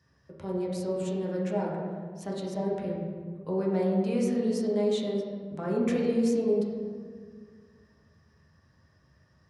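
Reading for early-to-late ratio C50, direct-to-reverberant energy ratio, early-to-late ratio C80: 1.5 dB, -4.0 dB, 3.0 dB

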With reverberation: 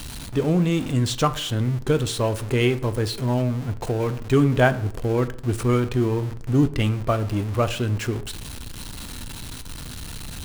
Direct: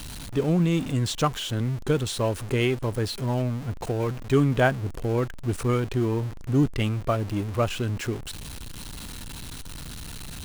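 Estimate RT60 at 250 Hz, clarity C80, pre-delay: 0.70 s, 20.0 dB, 4 ms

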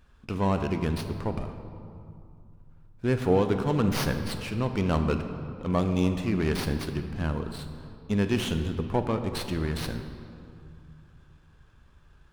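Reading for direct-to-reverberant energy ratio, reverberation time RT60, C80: 7.5 dB, 2.4 s, 9.0 dB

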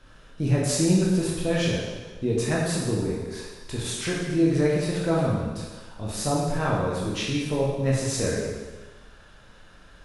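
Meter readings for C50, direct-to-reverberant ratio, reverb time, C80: 0.5 dB, -4.5 dB, 1.3 s, 2.5 dB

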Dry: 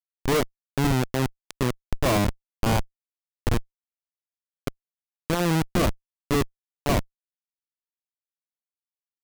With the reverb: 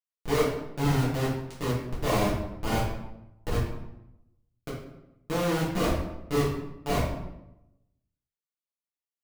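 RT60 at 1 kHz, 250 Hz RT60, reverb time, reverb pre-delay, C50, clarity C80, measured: 0.85 s, 1.0 s, 0.90 s, 3 ms, 2.5 dB, 6.0 dB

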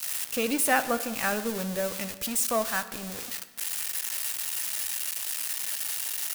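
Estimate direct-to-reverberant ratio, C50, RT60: 11.0 dB, 13.5 dB, 1.3 s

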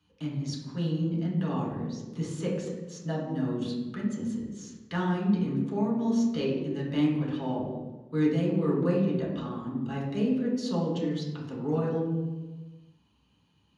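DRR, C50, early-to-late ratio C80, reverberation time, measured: -5.5 dB, 2.5 dB, 5.5 dB, 1.2 s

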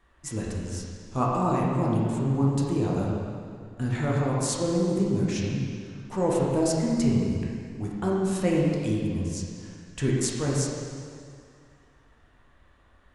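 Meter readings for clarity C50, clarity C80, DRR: -1.0 dB, 1.0 dB, -4.5 dB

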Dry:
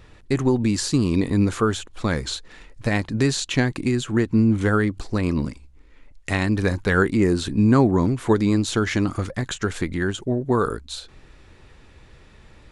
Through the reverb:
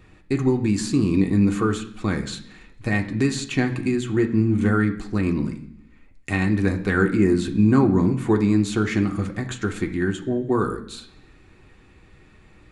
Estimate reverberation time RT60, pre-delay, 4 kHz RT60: 0.70 s, 3 ms, 0.95 s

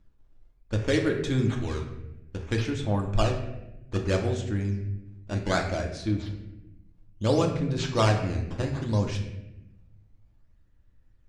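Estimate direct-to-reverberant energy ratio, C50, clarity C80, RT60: 1.5 dB, 6.5 dB, 9.0 dB, 0.95 s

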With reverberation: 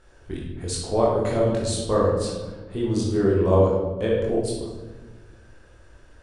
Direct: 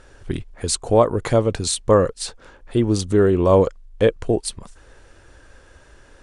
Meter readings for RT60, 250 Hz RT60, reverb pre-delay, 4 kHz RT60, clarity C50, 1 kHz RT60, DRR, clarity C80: 1.4 s, 1.9 s, 21 ms, 0.75 s, 0.5 dB, 1.2 s, -5.0 dB, 4.0 dB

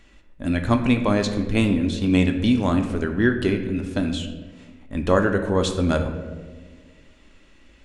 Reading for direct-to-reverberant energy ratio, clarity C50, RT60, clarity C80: 5.0 dB, 8.5 dB, 1.5 s, 10.0 dB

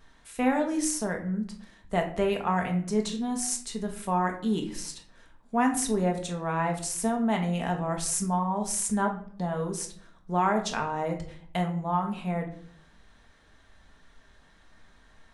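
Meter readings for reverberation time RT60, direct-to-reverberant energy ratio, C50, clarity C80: 0.55 s, 2.0 dB, 10.0 dB, 14.0 dB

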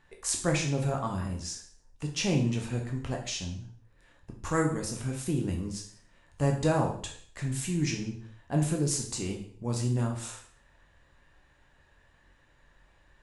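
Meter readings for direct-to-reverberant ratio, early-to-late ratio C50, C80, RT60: 0.5 dB, 7.0 dB, 11.0 dB, 0.55 s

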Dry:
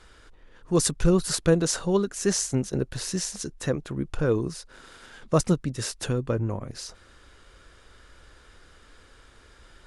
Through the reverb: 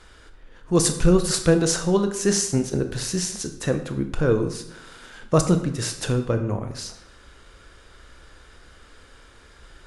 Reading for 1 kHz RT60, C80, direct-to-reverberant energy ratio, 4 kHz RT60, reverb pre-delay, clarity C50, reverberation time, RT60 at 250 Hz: 0.80 s, 12.5 dB, 7.0 dB, 0.60 s, 20 ms, 10.0 dB, 0.80 s, 0.80 s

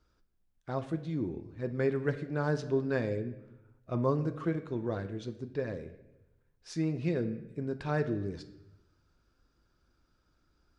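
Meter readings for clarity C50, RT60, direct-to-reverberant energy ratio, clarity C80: 12.5 dB, 0.90 s, 8.5 dB, 14.5 dB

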